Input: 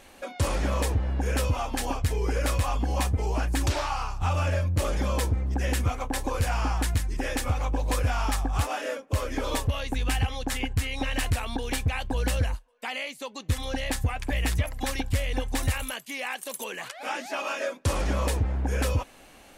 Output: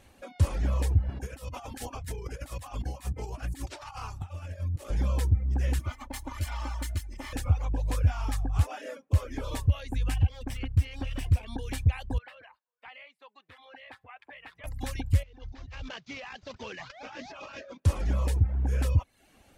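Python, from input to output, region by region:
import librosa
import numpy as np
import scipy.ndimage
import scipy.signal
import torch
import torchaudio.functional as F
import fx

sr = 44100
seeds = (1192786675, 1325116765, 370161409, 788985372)

y = fx.chain(x, sr, fx.highpass(hz=160.0, slope=6),
    fx.over_compress(threshold_db=-33.0, ratio=-0.5),
    fx.high_shelf(hz=6700.0, db=5.0), at=(1.09, 4.9))
y = fx.chain(y, sr, fx.lower_of_two(delay_ms=0.95),
    fx.low_shelf(hz=300.0, db=-10.5),
    fx.comb(ms=3.4, depth=0.82), at=(5.79, 7.33))
y = fx.chain(y, sr, fx.lower_of_two(delay_ms=0.37),
    fx.high_shelf(hz=5100.0, db=-5.5), at=(10.14, 11.48))
y = fx.chain(y, sr, fx.highpass(hz=900.0, slope=12),
    fx.clip_hard(threshold_db=-23.5),
    fx.air_absorb(metres=450.0), at=(12.18, 14.64))
y = fx.chain(y, sr, fx.cvsd(bps=32000),
    fx.over_compress(threshold_db=-35.0, ratio=-1.0), at=(15.23, 17.8))
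y = fx.peak_eq(y, sr, hz=85.0, db=13.0, octaves=2.2)
y = fx.dereverb_blind(y, sr, rt60_s=0.58)
y = y * librosa.db_to_amplitude(-8.5)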